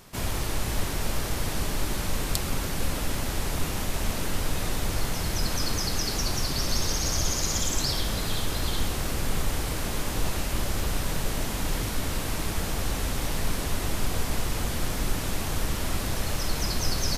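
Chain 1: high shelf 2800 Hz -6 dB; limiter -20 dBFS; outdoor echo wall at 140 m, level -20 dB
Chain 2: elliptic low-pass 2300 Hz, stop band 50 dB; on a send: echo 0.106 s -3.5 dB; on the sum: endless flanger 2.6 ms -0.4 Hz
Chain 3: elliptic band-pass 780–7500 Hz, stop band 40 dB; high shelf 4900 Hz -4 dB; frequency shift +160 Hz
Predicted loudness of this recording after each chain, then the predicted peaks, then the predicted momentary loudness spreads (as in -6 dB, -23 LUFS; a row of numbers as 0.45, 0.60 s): -32.5, -34.5, -34.5 LUFS; -19.0, -15.5, -9.5 dBFS; 2, 1, 6 LU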